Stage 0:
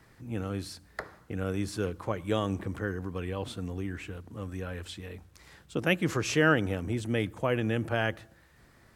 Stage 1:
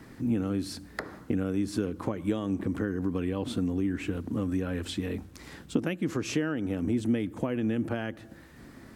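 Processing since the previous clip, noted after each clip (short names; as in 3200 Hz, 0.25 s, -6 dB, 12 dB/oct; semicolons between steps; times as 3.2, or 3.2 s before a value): compressor 12:1, threshold -37 dBFS, peak gain reduction 19.5 dB; bell 260 Hz +12.5 dB 1 oct; gain +6 dB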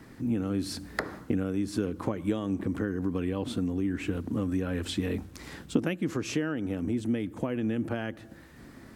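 vocal rider within 5 dB 0.5 s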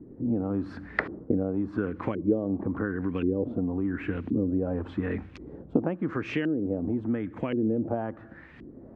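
LFO low-pass saw up 0.93 Hz 330–2800 Hz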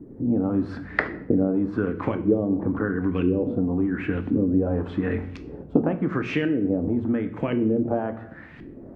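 shoebox room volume 120 m³, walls mixed, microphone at 0.35 m; gain +4 dB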